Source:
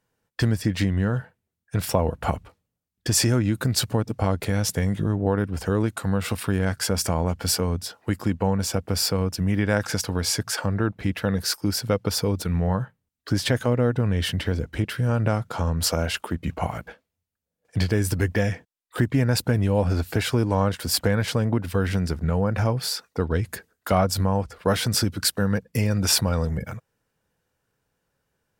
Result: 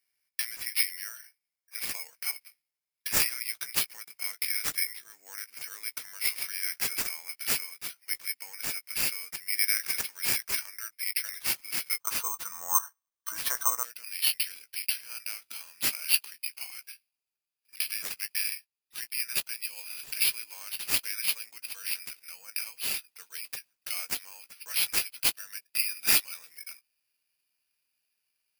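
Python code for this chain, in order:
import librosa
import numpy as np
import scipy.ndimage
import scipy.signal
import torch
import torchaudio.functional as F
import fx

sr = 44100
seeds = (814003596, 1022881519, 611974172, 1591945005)

y = fx.highpass_res(x, sr, hz=fx.steps((0.0, 2200.0), (12.0, 1100.0), (13.83, 2500.0)), q=8.8)
y = fx.doubler(y, sr, ms=17.0, db=-11.0)
y = (np.kron(y[::6], np.eye(6)[0]) * 6)[:len(y)]
y = F.gain(torch.from_numpy(y), -13.0).numpy()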